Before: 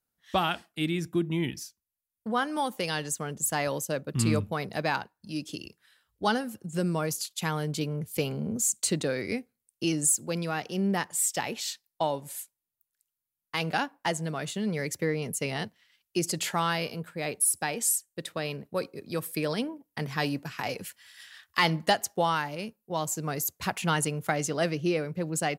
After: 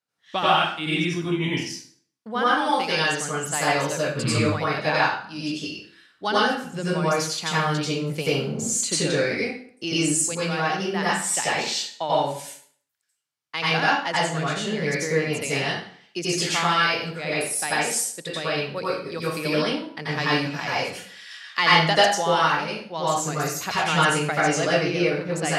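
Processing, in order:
band-pass filter 110–4,500 Hz
spectral tilt +2 dB per octave
dense smooth reverb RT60 0.55 s, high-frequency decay 0.8×, pre-delay 75 ms, DRR −8 dB

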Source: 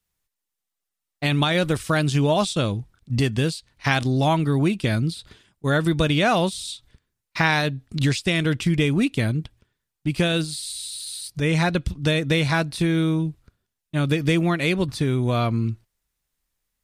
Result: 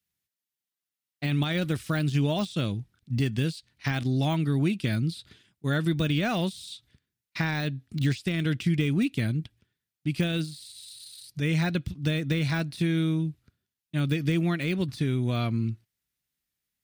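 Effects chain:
high-pass filter 97 Hz
de-essing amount 75%
octave-band graphic EQ 500/1,000/8,000 Hz −6/−8/−4 dB
level −2.5 dB

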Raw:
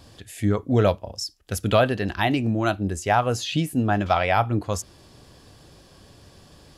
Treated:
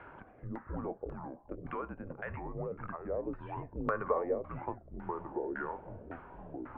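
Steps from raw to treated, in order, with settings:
spectral tilt +3.5 dB per octave
brickwall limiter −13 dBFS, peak gain reduction 8.5 dB
downward compressor 5 to 1, threshold −42 dBFS, peak gain reduction 19 dB
single-sideband voice off tune −190 Hz 200–2,600 Hz
0:03.49–0:04.38: hollow resonant body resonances 260/440/1,100/1,800 Hz, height 10 dB, ringing for 25 ms
delay with pitch and tempo change per echo 195 ms, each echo −4 semitones, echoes 3, each echo −6 dB
auto-filter low-pass saw down 1.8 Hz 390–1,600 Hz
wow of a warped record 33 1/3 rpm, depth 160 cents
level +3 dB

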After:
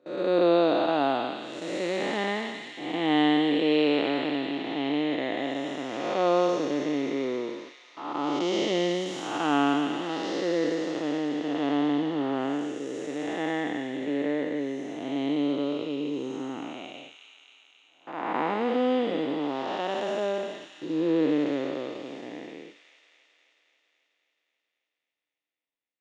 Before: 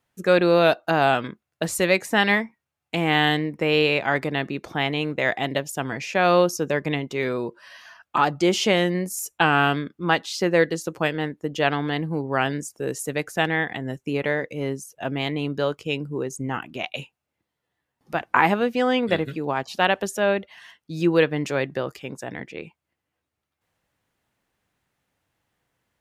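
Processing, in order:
spectrum smeared in time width 376 ms
noise gate with hold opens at −30 dBFS
loudspeaker in its box 290–6,200 Hz, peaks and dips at 290 Hz +9 dB, 1,600 Hz −9 dB, 2,500 Hz −7 dB, 4,600 Hz −4 dB
delay with a high-pass on its return 269 ms, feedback 66%, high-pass 2,500 Hz, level −4 dB

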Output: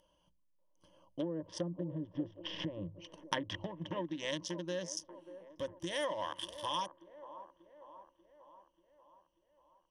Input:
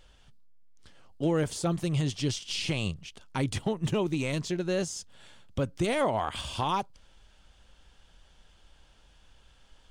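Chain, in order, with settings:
adaptive Wiener filter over 25 samples
source passing by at 0:02.29, 8 m/s, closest 2.9 metres
treble cut that deepens with the level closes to 570 Hz, closed at −31.5 dBFS
mains-hum notches 50/100 Hz
treble cut that deepens with the level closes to 2,900 Hz, closed at −35.5 dBFS
EQ curve with evenly spaced ripples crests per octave 1.2, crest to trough 15 dB
downward compressor 5 to 1, threshold −42 dBFS, peak gain reduction 18 dB
RIAA equalisation recording
delay with a band-pass on its return 588 ms, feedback 57%, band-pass 570 Hz, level −12 dB
level +11.5 dB

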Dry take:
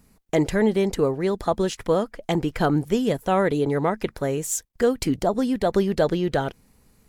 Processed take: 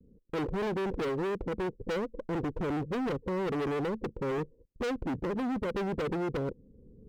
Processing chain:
camcorder AGC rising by 13 dB per second
Butterworth low-pass 530 Hz 96 dB per octave
low-shelf EQ 400 Hz −8 dB
gain into a clipping stage and back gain 35.5 dB
pitch vibrato 1.1 Hz 33 cents
windowed peak hold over 3 samples
level +5.5 dB

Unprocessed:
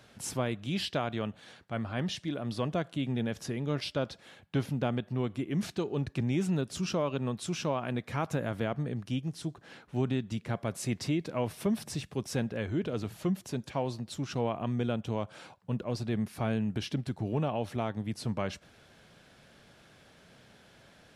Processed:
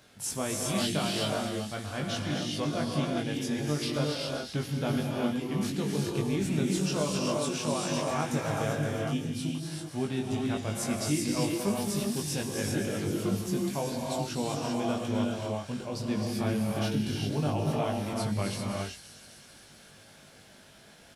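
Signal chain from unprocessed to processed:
high-shelf EQ 5,500 Hz +8 dB
double-tracking delay 20 ms −3 dB
delay with a high-pass on its return 259 ms, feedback 71%, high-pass 4,800 Hz, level −7 dB
reverb whose tail is shaped and stops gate 420 ms rising, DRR −1.5 dB
level −3 dB

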